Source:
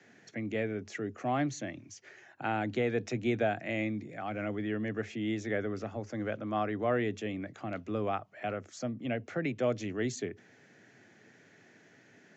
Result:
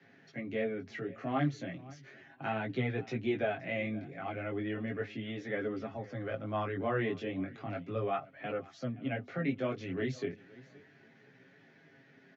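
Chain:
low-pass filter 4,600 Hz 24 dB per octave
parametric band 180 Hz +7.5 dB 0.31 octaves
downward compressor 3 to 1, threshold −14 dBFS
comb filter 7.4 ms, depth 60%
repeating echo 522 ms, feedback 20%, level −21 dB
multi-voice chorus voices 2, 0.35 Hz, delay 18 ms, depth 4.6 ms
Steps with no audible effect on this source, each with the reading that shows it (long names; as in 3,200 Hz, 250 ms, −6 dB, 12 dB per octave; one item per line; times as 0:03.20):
downward compressor, threshold −14 dBFS: peak of its input −17.0 dBFS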